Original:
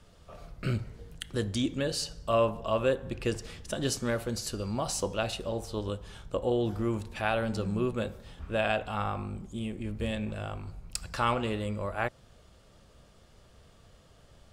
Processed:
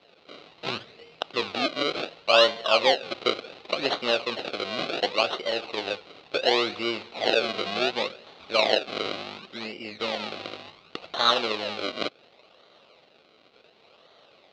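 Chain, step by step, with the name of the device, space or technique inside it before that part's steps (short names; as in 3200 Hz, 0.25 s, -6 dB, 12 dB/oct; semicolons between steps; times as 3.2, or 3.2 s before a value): circuit-bent sampling toy (decimation with a swept rate 34×, swing 100% 0.69 Hz; speaker cabinet 520–4500 Hz, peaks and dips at 950 Hz -6 dB, 1700 Hz -8 dB, 2700 Hz +5 dB, 4000 Hz +9 dB); gain +9 dB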